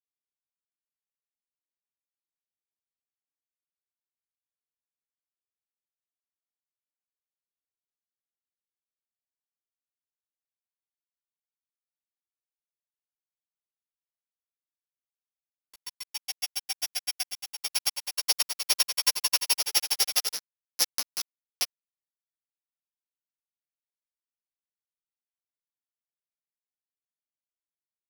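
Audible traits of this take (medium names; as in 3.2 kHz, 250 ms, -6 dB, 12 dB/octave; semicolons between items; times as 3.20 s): a buzz of ramps at a fixed pitch in blocks of 8 samples; chopped level 7.5 Hz, depth 65%, duty 40%; a quantiser's noise floor 8-bit, dither none; a shimmering, thickened sound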